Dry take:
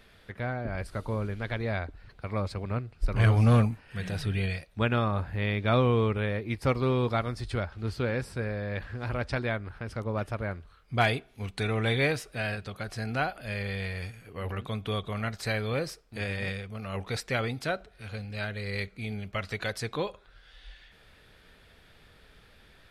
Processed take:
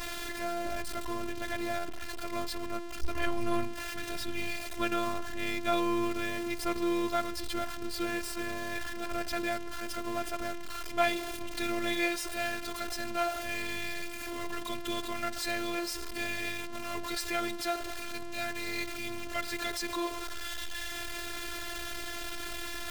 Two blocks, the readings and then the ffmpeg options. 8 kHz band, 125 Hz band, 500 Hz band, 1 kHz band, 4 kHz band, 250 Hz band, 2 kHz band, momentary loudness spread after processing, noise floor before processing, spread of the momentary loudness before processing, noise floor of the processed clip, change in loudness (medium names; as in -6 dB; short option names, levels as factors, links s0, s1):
+8.5 dB, -20.5 dB, -4.0 dB, 0.0 dB, +2.0 dB, -2.5 dB, -1.5 dB, 7 LU, -58 dBFS, 11 LU, -38 dBFS, -4.0 dB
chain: -af "aeval=exprs='val(0)+0.5*0.0422*sgn(val(0))':c=same,afftfilt=real='hypot(re,im)*cos(PI*b)':imag='0':win_size=512:overlap=0.75,anlmdn=0.00631,volume=0.841"